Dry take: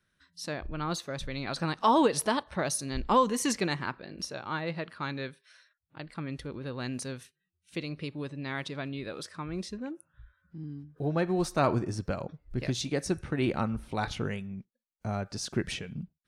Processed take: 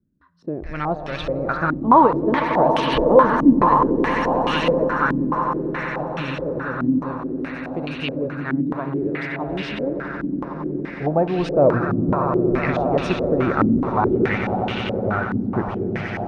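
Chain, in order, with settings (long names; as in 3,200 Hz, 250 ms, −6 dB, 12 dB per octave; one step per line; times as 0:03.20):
echo that builds up and dies away 92 ms, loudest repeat 8, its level −11 dB
low-pass on a step sequencer 4.7 Hz 270–2,900 Hz
level +5.5 dB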